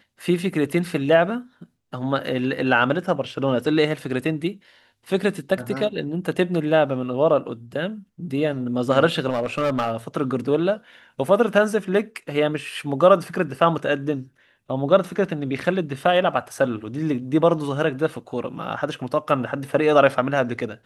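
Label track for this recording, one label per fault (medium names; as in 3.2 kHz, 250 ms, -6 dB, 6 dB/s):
9.290000	9.970000	clipped -17.5 dBFS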